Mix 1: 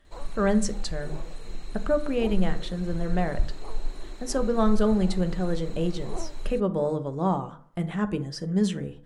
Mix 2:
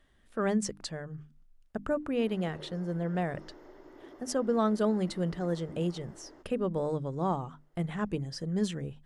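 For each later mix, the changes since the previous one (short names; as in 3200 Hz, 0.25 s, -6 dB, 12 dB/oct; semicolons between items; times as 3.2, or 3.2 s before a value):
first sound: muted; reverb: off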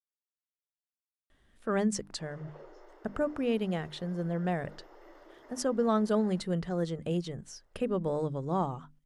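speech: entry +1.30 s; background: add HPF 410 Hz 24 dB/oct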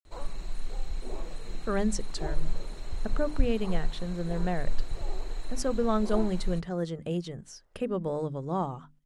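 first sound: unmuted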